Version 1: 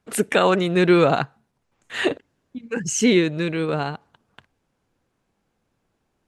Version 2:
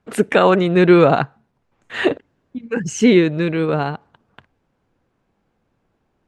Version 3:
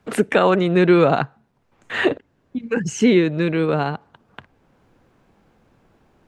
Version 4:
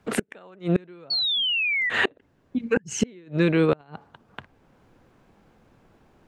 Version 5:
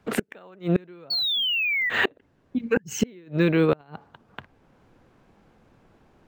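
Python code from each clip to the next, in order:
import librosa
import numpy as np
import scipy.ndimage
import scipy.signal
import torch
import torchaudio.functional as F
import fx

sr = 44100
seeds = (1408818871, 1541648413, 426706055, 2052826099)

y1 = fx.lowpass(x, sr, hz=2200.0, slope=6)
y1 = y1 * 10.0 ** (5.0 / 20.0)
y2 = fx.band_squash(y1, sr, depth_pct=40)
y2 = y2 * 10.0 ** (-2.0 / 20.0)
y3 = fx.gate_flip(y2, sr, shuts_db=-9.0, range_db=-32)
y3 = fx.spec_paint(y3, sr, seeds[0], shape='fall', start_s=1.1, length_s=0.8, low_hz=1900.0, high_hz=4500.0, level_db=-24.0)
y4 = np.interp(np.arange(len(y3)), np.arange(len(y3))[::2], y3[::2])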